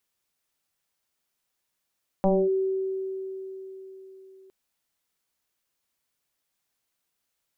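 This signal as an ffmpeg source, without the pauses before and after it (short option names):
-f lavfi -i "aevalsrc='0.141*pow(10,-3*t/4.14)*sin(2*PI*382*t+2.1*clip(1-t/0.25,0,1)*sin(2*PI*0.51*382*t))':d=2.26:s=44100"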